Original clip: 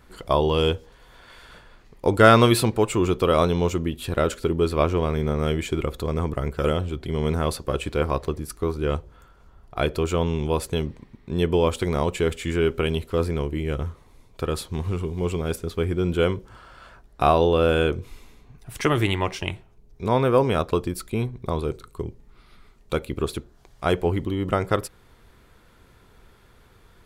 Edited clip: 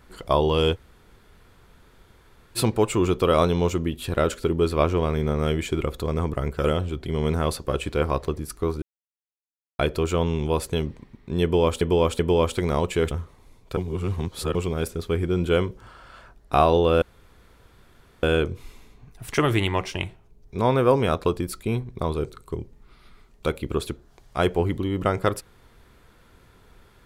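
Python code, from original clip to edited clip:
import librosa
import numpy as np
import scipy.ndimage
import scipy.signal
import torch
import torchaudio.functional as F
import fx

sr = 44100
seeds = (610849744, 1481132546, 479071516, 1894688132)

y = fx.edit(x, sr, fx.room_tone_fill(start_s=0.75, length_s=1.82, crossfade_s=0.04),
    fx.silence(start_s=8.82, length_s=0.97),
    fx.repeat(start_s=11.43, length_s=0.38, count=3),
    fx.cut(start_s=12.35, length_s=1.44),
    fx.reverse_span(start_s=14.45, length_s=0.78),
    fx.insert_room_tone(at_s=17.7, length_s=1.21), tone=tone)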